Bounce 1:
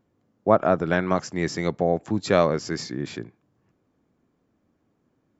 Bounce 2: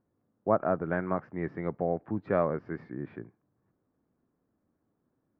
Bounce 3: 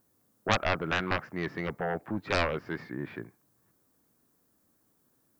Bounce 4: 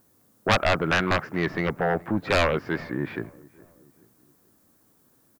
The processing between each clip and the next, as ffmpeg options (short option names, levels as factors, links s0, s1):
-af "lowpass=f=1800:w=0.5412,lowpass=f=1800:w=1.3066,volume=0.422"
-af "crystalizer=i=9:c=0,aeval=exprs='0.447*(cos(1*acos(clip(val(0)/0.447,-1,1)))-cos(1*PI/2))+0.2*(cos(7*acos(clip(val(0)/0.447,-1,1)))-cos(7*PI/2))':c=same,volume=0.531"
-filter_complex "[0:a]asoftclip=type=tanh:threshold=0.141,asplit=2[s0][s1];[s1]adelay=424,lowpass=f=1300:p=1,volume=0.0794,asplit=2[s2][s3];[s3]adelay=424,lowpass=f=1300:p=1,volume=0.48,asplit=2[s4][s5];[s5]adelay=424,lowpass=f=1300:p=1,volume=0.48[s6];[s0][s2][s4][s6]amix=inputs=4:normalize=0,volume=2.51"